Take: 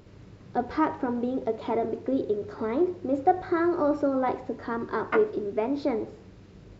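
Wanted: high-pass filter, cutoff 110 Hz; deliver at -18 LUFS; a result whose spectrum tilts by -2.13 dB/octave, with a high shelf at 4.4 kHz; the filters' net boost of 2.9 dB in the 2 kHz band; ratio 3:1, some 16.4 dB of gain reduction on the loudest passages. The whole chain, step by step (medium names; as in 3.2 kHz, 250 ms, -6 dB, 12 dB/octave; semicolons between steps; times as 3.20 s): high-pass 110 Hz; peaking EQ 2 kHz +5 dB; treble shelf 4.4 kHz -7 dB; compression 3:1, threshold -38 dBFS; trim +21 dB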